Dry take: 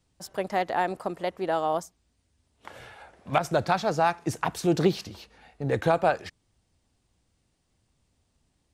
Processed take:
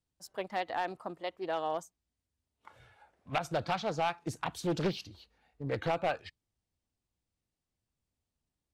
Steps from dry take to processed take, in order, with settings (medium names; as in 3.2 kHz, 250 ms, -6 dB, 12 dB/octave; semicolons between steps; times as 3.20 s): spectral noise reduction 9 dB; overload inside the chain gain 17 dB; dynamic bell 2.9 kHz, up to +6 dB, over -47 dBFS, Q 1.5; loudspeaker Doppler distortion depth 0.4 ms; trim -7.5 dB